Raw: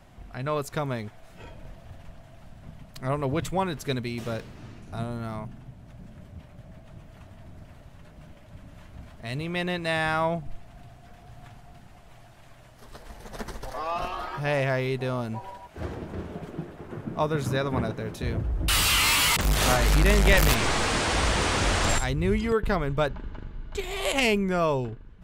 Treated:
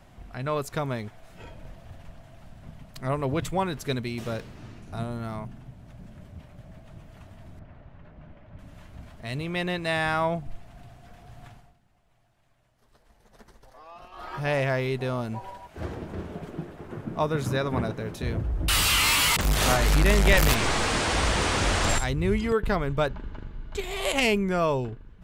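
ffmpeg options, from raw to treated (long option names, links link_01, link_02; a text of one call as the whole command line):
ffmpeg -i in.wav -filter_complex "[0:a]asettb=1/sr,asplit=3[link_01][link_02][link_03];[link_01]atrim=end=7.594[link_04];[link_02]atrim=start=7.59:end=8.59,asetpts=PTS-STARTPTS,afade=type=in:duration=0.004:curve=qsin,afade=type=out:start_time=0.996:duration=0.004:curve=qsin,lowpass=2200[link_05];[link_03]atrim=start=8.586[link_06];[link_04][link_05]acrossfade=duration=0.004:curve1=hsin:curve2=qsin[link_07];[link_07][link_06]acrossfade=duration=0.004:curve1=qsin:curve2=hsin,asplit=3[link_08][link_09][link_10];[link_08]atrim=end=11.76,asetpts=PTS-STARTPTS,afade=type=out:start_time=11.48:duration=0.28:silence=0.149624[link_11];[link_09]atrim=start=11.76:end=14.11,asetpts=PTS-STARTPTS,volume=-16.5dB[link_12];[link_10]atrim=start=14.11,asetpts=PTS-STARTPTS,afade=type=in:duration=0.28:silence=0.149624[link_13];[link_11][link_12][link_13]concat=n=3:v=0:a=1" out.wav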